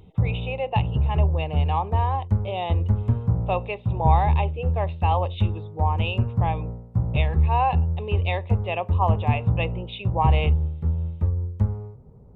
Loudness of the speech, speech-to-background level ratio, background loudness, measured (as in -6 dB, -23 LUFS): -29.0 LUFS, -4.0 dB, -25.0 LUFS